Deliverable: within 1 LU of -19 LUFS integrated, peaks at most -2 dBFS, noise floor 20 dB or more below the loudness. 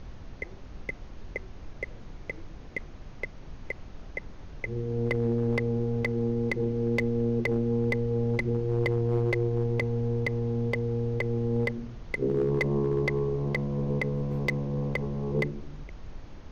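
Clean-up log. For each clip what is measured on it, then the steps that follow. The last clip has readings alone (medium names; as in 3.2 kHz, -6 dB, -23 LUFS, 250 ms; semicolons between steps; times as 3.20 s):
clipped samples 0.4%; clipping level -19.0 dBFS; noise floor -45 dBFS; noise floor target -49 dBFS; loudness -29.0 LUFS; peak level -19.0 dBFS; loudness target -19.0 LUFS
-> clip repair -19 dBFS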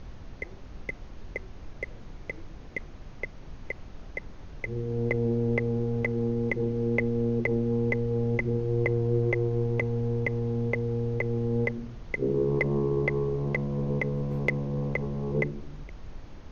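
clipped samples 0.0%; noise floor -45 dBFS; noise floor target -49 dBFS
-> noise print and reduce 6 dB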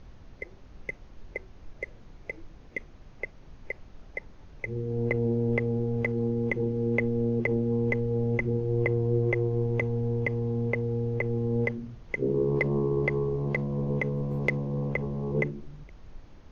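noise floor -50 dBFS; loudness -28.5 LUFS; peak level -10.0 dBFS; loudness target -19.0 LUFS
-> trim +9.5 dB; peak limiter -2 dBFS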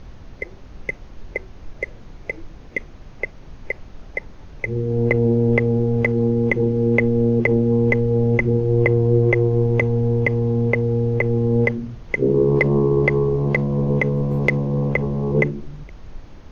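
loudness -19.0 LUFS; peak level -2.0 dBFS; noise floor -41 dBFS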